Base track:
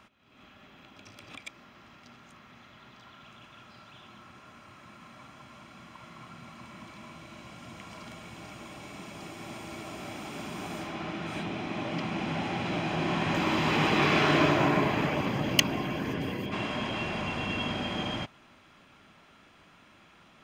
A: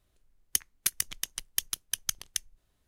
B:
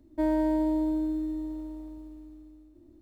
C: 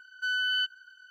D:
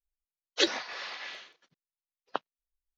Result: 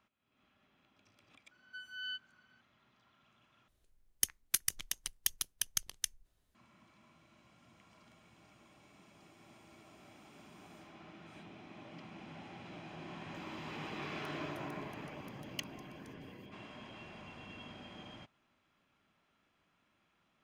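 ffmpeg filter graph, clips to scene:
-filter_complex "[1:a]asplit=2[s0][s1];[0:a]volume=0.119[s2];[3:a]asplit=2[s3][s4];[s4]adelay=7.1,afreqshift=2.5[s5];[s3][s5]amix=inputs=2:normalize=1[s6];[s1]acompressor=threshold=0.00447:ratio=6:attack=3.2:release=140:knee=1:detection=peak[s7];[s2]asplit=2[s8][s9];[s8]atrim=end=3.684[s10];[s0]atrim=end=2.87,asetpts=PTS-STARTPTS,volume=0.631[s11];[s9]atrim=start=6.546[s12];[s6]atrim=end=1.1,asetpts=PTS-STARTPTS,volume=0.224,afade=t=in:d=0.004:c=hsin,afade=t=out:st=1.096:d=0.004:c=hsin,adelay=1510[s13];[s7]atrim=end=2.87,asetpts=PTS-STARTPTS,volume=0.141,afade=t=in:d=0.004:c=hsin,afade=t=out:st=2.866:d=0.004:c=hsin,adelay=13700[s14];[s10][s11]acrossfade=d=0.004:c1=hsin:c2=hsin[s15];[s15][s12]acrossfade=d=0.004:c1=hsin:c2=hsin[s16];[s16][s13][s14]amix=inputs=3:normalize=0"

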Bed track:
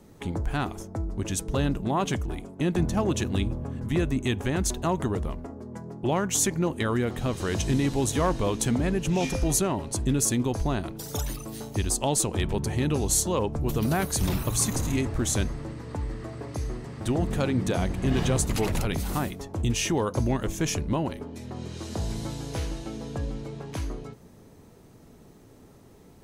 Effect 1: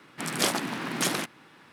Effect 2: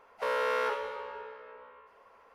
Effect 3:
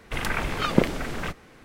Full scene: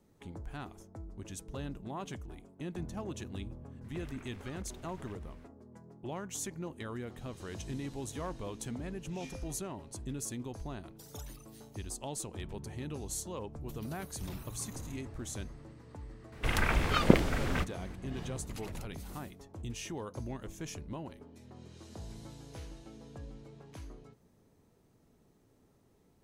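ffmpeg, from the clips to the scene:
-filter_complex "[3:a]asplit=2[s0][s1];[0:a]volume=0.178[s2];[s0]acompressor=threshold=0.0112:ratio=6:attack=3.2:release=140:knee=1:detection=peak[s3];[s1]equalizer=f=66:t=o:w=1.1:g=9.5[s4];[s3]atrim=end=1.64,asetpts=PTS-STARTPTS,volume=0.237,afade=t=in:d=0.004:c=hsin,afade=t=out:st=1.636:d=0.004:c=hsin,adelay=3840[s5];[s4]atrim=end=1.64,asetpts=PTS-STARTPTS,volume=0.708,afade=t=in:d=0.004:c=hsin,afade=t=out:st=1.636:d=0.004:c=hsin,adelay=16320[s6];[s2][s5][s6]amix=inputs=3:normalize=0"

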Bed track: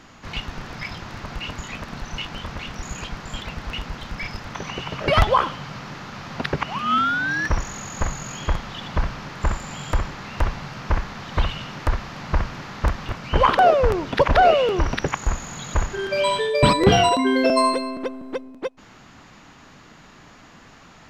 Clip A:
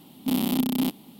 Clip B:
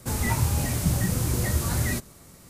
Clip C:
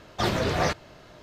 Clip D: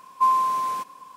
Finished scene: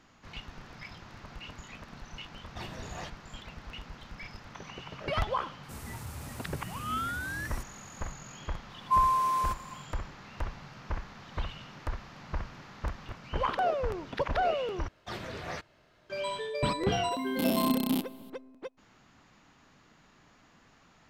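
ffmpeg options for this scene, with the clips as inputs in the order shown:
-filter_complex "[3:a]asplit=2[s0][s1];[0:a]volume=0.211[s2];[s0]aecho=1:1:1.1:0.35[s3];[2:a]asoftclip=type=tanh:threshold=0.15[s4];[4:a]dynaudnorm=f=130:g=3:m=3.76[s5];[s1]equalizer=f=2000:t=o:w=1.6:g=4.5[s6];[s2]asplit=2[s7][s8];[s7]atrim=end=14.884[s9];[s6]atrim=end=1.22,asetpts=PTS-STARTPTS,volume=0.168[s10];[s8]atrim=start=16.096[s11];[s3]atrim=end=1.22,asetpts=PTS-STARTPTS,volume=0.126,afade=t=in:d=0.004:c=hsin,afade=t=out:st=1.216:d=0.004:c=hsin,adelay=2370[s12];[s4]atrim=end=2.49,asetpts=PTS-STARTPTS,volume=0.15,afade=t=in:d=0.004:c=hsin,afade=t=out:st=2.486:d=0.004:c=hsin,adelay=5630[s13];[s5]atrim=end=1.16,asetpts=PTS-STARTPTS,volume=0.211,afade=t=in:d=0.004:c=hsin,afade=t=out:st=1.156:d=0.004:c=hsin,adelay=8700[s14];[1:a]atrim=end=1.19,asetpts=PTS-STARTPTS,volume=0.631,afade=t=in:d=0.004:c=hsin,afade=t=out:st=1.186:d=0.004:c=hsin,adelay=17110[s15];[s9][s10]acrossfade=d=0.004:c1=hsin:c2=hsin[s16];[s16][s11]acrossfade=d=0.004:c1=hsin:c2=hsin[s17];[s17][s12][s13][s14][s15]amix=inputs=5:normalize=0"

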